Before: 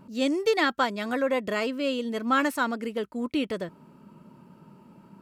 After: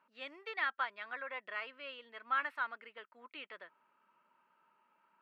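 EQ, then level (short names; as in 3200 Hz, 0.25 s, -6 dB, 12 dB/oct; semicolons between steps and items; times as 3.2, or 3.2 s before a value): Chebyshev high-pass 1600 Hz, order 2; air absorption 470 m; high shelf 4500 Hz -5 dB; -2.5 dB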